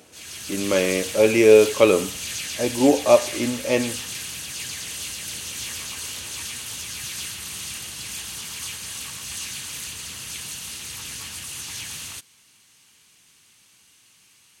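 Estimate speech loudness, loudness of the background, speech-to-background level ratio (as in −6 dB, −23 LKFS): −19.0 LKFS, −30.5 LKFS, 11.5 dB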